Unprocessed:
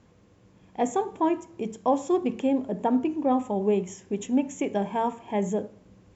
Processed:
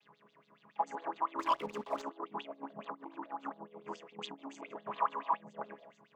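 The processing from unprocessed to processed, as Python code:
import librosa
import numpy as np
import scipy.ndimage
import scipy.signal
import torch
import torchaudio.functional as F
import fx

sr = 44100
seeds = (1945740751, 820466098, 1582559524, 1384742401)

p1 = fx.chord_vocoder(x, sr, chord='minor triad', root=49)
p2 = fx.level_steps(p1, sr, step_db=16)
p3 = p1 + F.gain(torch.from_numpy(p2), -0.5).numpy()
p4 = fx.echo_stepped(p3, sr, ms=120, hz=300.0, octaves=1.4, feedback_pct=70, wet_db=-8.0)
p5 = fx.over_compress(p4, sr, threshold_db=-30.0, ratio=-1.0)
p6 = 10.0 ** (-22.5 / 20.0) * np.tanh(p5 / 10.0 ** (-22.5 / 20.0))
p7 = fx.filter_lfo_bandpass(p6, sr, shape='sine', hz=7.1, low_hz=900.0, high_hz=4100.0, q=8.0)
p8 = fx.leveller(p7, sr, passes=2, at=(1.39, 2.02))
y = F.gain(torch.from_numpy(p8), 12.5).numpy()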